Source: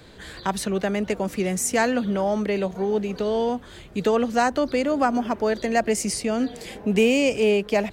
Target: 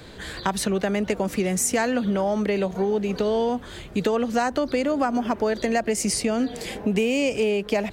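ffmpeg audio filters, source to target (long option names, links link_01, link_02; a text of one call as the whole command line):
ffmpeg -i in.wav -af "acompressor=threshold=-24dB:ratio=6,volume=4.5dB" out.wav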